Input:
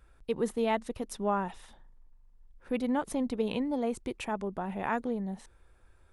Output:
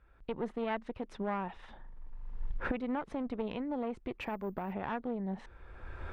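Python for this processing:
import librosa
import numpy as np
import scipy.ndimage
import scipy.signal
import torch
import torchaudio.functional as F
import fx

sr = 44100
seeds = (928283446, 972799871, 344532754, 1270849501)

y = fx.diode_clip(x, sr, knee_db=-33.5)
y = fx.recorder_agc(y, sr, target_db=-22.5, rise_db_per_s=26.0, max_gain_db=30)
y = fx.resample_bad(y, sr, factor=3, down='none', up='zero_stuff', at=(4.21, 4.73))
y = scipy.signal.sosfilt(scipy.signal.butter(2, 2600.0, 'lowpass', fs=sr, output='sos'), y)
y = fx.peak_eq(y, sr, hz=1800.0, db=2.5, octaves=2.4)
y = y * 10.0 ** (-5.0 / 20.0)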